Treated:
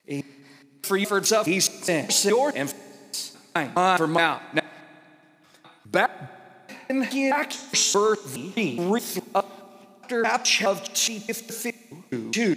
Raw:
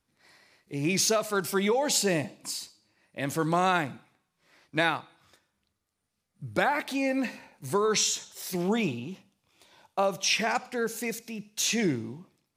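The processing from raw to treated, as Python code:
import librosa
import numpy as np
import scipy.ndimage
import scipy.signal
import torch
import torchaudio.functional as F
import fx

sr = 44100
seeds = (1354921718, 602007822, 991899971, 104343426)

y = fx.block_reorder(x, sr, ms=209.0, group=4)
y = scipy.signal.sosfilt(scipy.signal.butter(2, 190.0, 'highpass', fs=sr, output='sos'), y)
y = fx.rev_fdn(y, sr, rt60_s=2.5, lf_ratio=1.5, hf_ratio=0.95, size_ms=24.0, drr_db=18.5)
y = F.gain(torch.from_numpy(y), 5.0).numpy()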